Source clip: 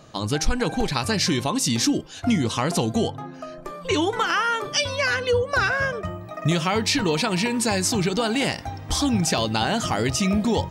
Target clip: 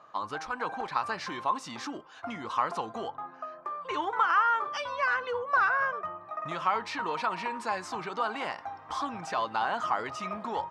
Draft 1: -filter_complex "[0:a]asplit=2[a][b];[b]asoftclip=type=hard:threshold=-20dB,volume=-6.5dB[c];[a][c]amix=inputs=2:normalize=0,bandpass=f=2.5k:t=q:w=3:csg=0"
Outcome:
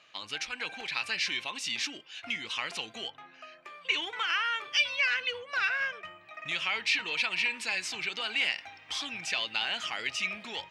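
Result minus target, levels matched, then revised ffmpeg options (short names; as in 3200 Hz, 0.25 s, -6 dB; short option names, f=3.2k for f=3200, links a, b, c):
1000 Hz band -12.0 dB
-filter_complex "[0:a]asplit=2[a][b];[b]asoftclip=type=hard:threshold=-20dB,volume=-6.5dB[c];[a][c]amix=inputs=2:normalize=0,bandpass=f=1.1k:t=q:w=3:csg=0"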